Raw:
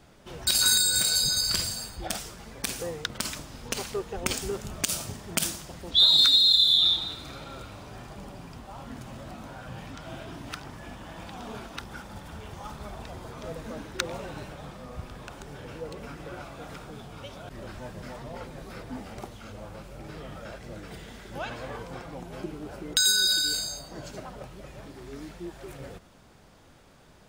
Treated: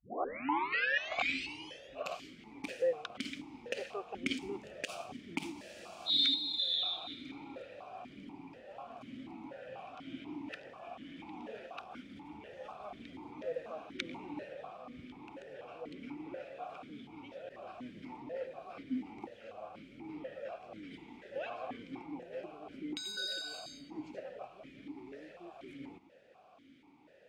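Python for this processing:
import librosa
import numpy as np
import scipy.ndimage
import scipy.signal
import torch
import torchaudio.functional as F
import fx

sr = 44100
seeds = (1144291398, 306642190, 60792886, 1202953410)

y = fx.tape_start_head(x, sr, length_s=2.53)
y = fx.spec_freeze(y, sr, seeds[0], at_s=5.56, hold_s=0.52)
y = fx.vowel_held(y, sr, hz=4.1)
y = y * 10.0 ** (6.0 / 20.0)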